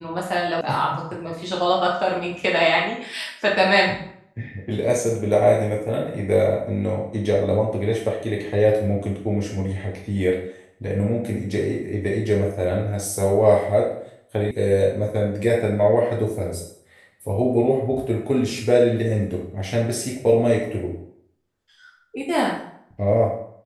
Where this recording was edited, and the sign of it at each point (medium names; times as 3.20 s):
0.61 s: sound stops dead
14.51 s: sound stops dead